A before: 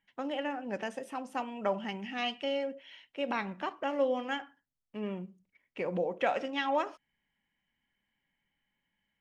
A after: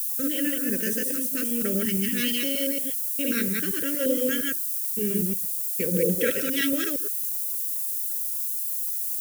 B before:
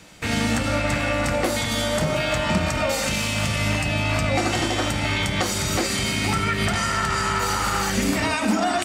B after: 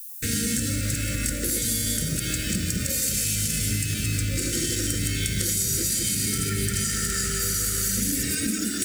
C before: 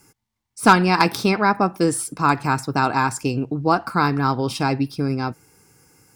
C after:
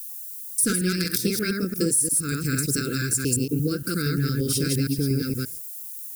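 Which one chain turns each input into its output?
delay that plays each chunk backwards 116 ms, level −1 dB
noise gate −40 dBFS, range −28 dB
background noise blue −54 dBFS
drawn EQ curve 120 Hz 0 dB, 2,600 Hz −7 dB, 11,000 Hz +15 dB
downward compressor 6 to 1, threshold −22 dBFS
Chebyshev band-stop filter 480–1,500 Hz, order 3
every ending faded ahead of time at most 280 dB per second
loudness normalisation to −24 LKFS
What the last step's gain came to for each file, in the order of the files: +11.0, +0.5, +3.0 decibels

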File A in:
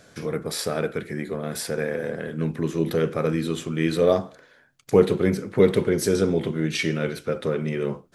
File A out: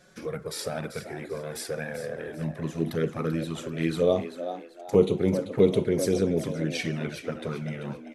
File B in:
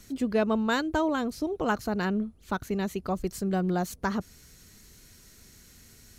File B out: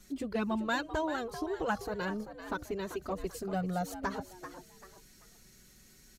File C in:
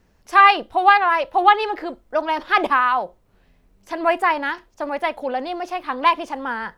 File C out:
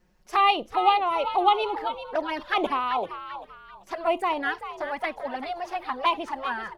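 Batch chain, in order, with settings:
flanger swept by the level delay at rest 5.7 ms, full sweep at −16 dBFS
echo with shifted repeats 389 ms, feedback 32%, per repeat +88 Hz, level −11 dB
level −2.5 dB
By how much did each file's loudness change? −4.0, −6.5, −7.0 LU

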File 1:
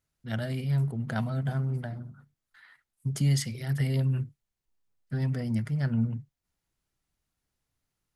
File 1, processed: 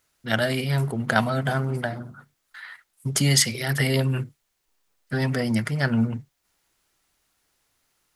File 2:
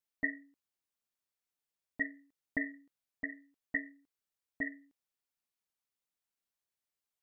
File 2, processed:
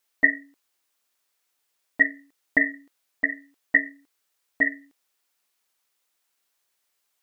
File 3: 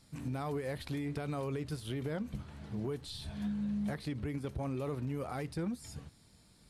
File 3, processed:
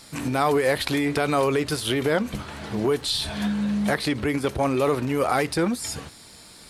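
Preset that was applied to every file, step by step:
drawn EQ curve 150 Hz 0 dB, 350 Hz +9 dB, 1,300 Hz +13 dB
loudness normalisation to −24 LKFS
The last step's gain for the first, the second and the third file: +2.0, +3.0, +7.0 decibels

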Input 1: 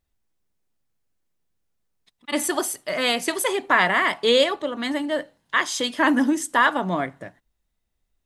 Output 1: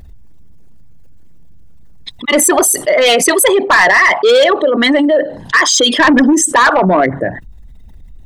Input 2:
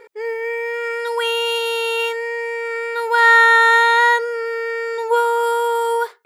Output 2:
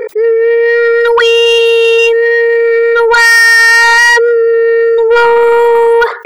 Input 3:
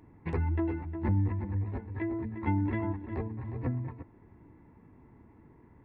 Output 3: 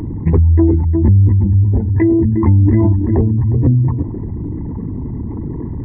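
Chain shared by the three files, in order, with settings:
spectral envelope exaggerated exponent 2
soft clipping −17.5 dBFS
envelope flattener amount 50%
normalise the peak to −1.5 dBFS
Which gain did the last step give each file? +13.0, +13.5, +18.0 decibels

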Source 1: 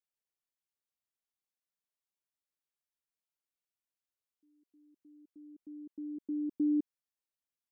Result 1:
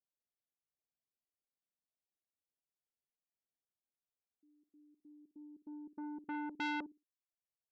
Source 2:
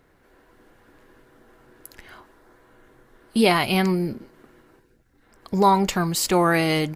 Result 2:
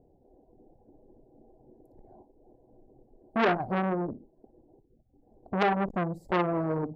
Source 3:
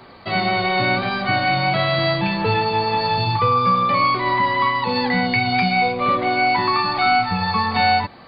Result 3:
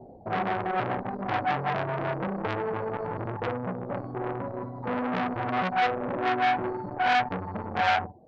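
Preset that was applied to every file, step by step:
reverb reduction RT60 0.74 s
elliptic low-pass filter 780 Hz, stop band 40 dB
flutter between parallel walls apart 9.7 metres, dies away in 0.24 s
saturating transformer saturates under 1,700 Hz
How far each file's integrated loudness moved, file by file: −8.0, −8.0, −10.5 LU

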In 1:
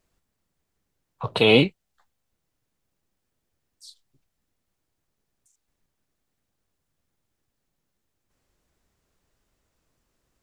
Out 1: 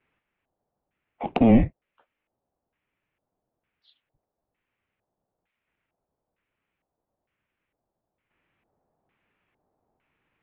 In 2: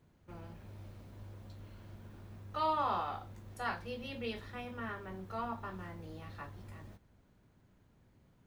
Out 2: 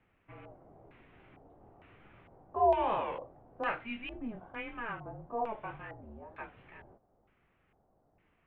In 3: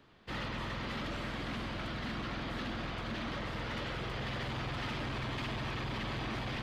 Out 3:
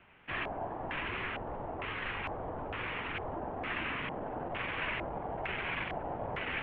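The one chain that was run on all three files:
tape wow and flutter 91 cents
single-sideband voice off tune −230 Hz 280–3,600 Hz
auto-filter low-pass square 1.1 Hz 730–2,400 Hz
level +1.5 dB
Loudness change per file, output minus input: −1.5, +5.5, +1.0 LU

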